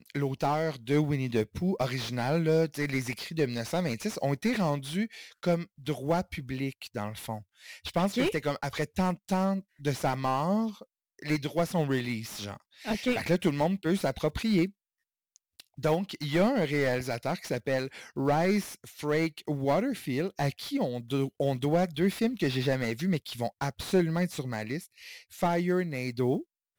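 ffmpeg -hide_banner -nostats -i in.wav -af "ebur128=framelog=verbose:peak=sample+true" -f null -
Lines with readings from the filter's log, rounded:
Integrated loudness:
  I:         -30.0 LUFS
  Threshold: -40.3 LUFS
Loudness range:
  LRA:         2.5 LU
  Threshold: -50.4 LUFS
  LRA low:   -31.7 LUFS
  LRA high:  -29.2 LUFS
Sample peak:
  Peak:      -13.5 dBFS
True peak:
  Peak:      -13.5 dBFS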